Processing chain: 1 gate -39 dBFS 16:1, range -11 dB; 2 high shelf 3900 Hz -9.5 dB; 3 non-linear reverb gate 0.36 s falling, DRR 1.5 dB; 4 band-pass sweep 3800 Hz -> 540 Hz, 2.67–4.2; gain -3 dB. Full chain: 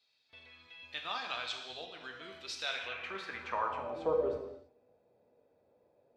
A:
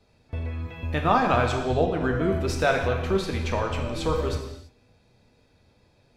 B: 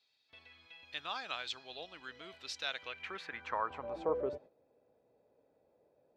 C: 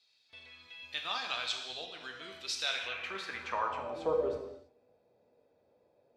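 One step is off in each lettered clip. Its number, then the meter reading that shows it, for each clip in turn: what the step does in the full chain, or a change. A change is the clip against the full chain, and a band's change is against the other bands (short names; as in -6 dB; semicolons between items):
4, 125 Hz band +18.5 dB; 3, crest factor change +3.0 dB; 2, 8 kHz band +6.5 dB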